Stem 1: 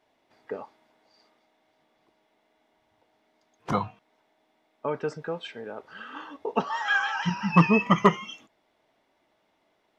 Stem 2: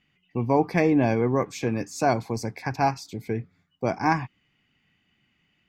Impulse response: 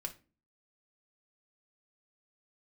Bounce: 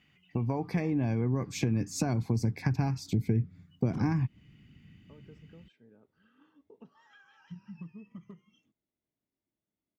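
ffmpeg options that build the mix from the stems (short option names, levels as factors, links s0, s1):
-filter_complex "[0:a]acompressor=threshold=0.0447:ratio=12,adelay=250,volume=0.335[s0];[1:a]acompressor=threshold=0.0398:ratio=3,volume=1.33,asplit=2[s1][s2];[s2]apad=whole_len=451254[s3];[s0][s3]sidechaingate=range=0.126:threshold=0.00178:ratio=16:detection=peak[s4];[s4][s1]amix=inputs=2:normalize=0,highpass=46,asubboost=boost=9.5:cutoff=250,acompressor=threshold=0.0282:ratio=2"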